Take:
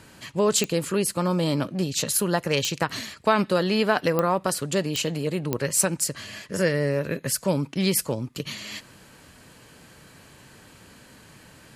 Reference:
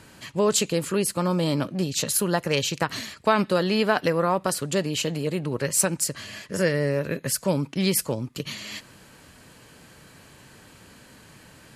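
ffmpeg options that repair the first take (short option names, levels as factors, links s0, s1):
-af "adeclick=t=4"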